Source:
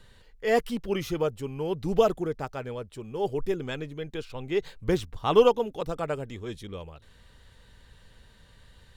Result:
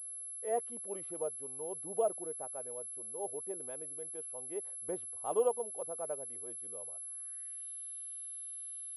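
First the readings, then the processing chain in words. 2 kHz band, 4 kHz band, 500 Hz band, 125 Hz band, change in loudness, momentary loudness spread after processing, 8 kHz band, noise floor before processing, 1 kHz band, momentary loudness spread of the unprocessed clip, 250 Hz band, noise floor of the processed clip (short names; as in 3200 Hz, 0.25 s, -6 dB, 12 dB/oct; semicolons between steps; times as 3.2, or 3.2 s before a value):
under -20 dB, under -25 dB, -11.0 dB, -26.0 dB, -10.0 dB, 7 LU, n/a, -56 dBFS, -11.0 dB, 15 LU, -18.5 dB, -45 dBFS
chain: band-pass sweep 620 Hz -> 3500 Hz, 6.91–7.7; pulse-width modulation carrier 11000 Hz; gain -6.5 dB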